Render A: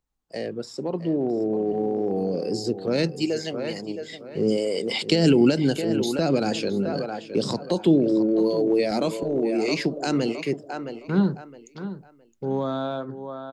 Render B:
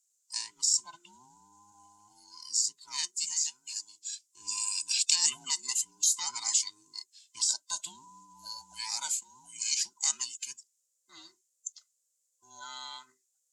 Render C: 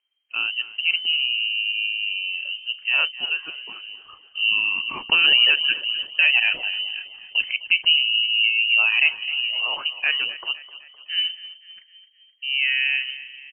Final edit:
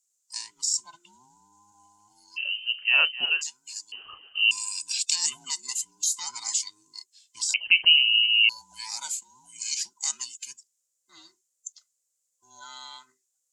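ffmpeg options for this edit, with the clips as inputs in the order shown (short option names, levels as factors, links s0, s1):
-filter_complex "[2:a]asplit=3[s0][s1][s2];[1:a]asplit=4[s3][s4][s5][s6];[s3]atrim=end=2.38[s7];[s0]atrim=start=2.36:end=3.43[s8];[s4]atrim=start=3.41:end=3.922[s9];[s1]atrim=start=3.918:end=4.512[s10];[s5]atrim=start=4.508:end=7.542[s11];[s2]atrim=start=7.538:end=8.492[s12];[s6]atrim=start=8.488[s13];[s7][s8]acrossfade=d=0.02:c1=tri:c2=tri[s14];[s14][s9]acrossfade=d=0.02:c1=tri:c2=tri[s15];[s15][s10]acrossfade=d=0.004:c1=hsin:c2=hsin[s16];[s16][s11]acrossfade=d=0.004:c1=hsin:c2=hsin[s17];[s17][s12]acrossfade=d=0.004:c1=hsin:c2=hsin[s18];[s18][s13]acrossfade=d=0.004:c1=hsin:c2=hsin"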